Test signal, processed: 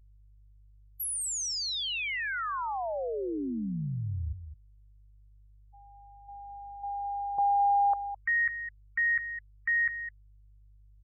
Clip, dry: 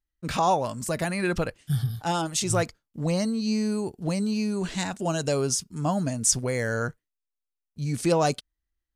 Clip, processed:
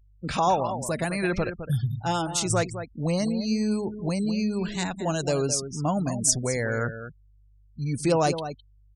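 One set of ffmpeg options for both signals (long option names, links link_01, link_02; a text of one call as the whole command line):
ffmpeg -i in.wav -filter_complex "[0:a]asplit=2[link_01][link_02];[link_02]adelay=209.9,volume=-10dB,highshelf=frequency=4000:gain=-4.72[link_03];[link_01][link_03]amix=inputs=2:normalize=0,aeval=exprs='val(0)+0.002*(sin(2*PI*50*n/s)+sin(2*PI*2*50*n/s)/2+sin(2*PI*3*50*n/s)/3+sin(2*PI*4*50*n/s)/4+sin(2*PI*5*50*n/s)/5)':channel_layout=same,afftfilt=real='re*gte(hypot(re,im),0.0126)':imag='im*gte(hypot(re,im),0.0126)':win_size=1024:overlap=0.75" out.wav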